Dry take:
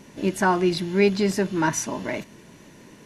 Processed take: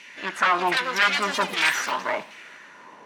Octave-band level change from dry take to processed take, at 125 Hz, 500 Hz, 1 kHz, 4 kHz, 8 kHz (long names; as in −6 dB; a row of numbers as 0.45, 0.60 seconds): −16.0, −8.0, +3.5, +7.5, −3.5 decibels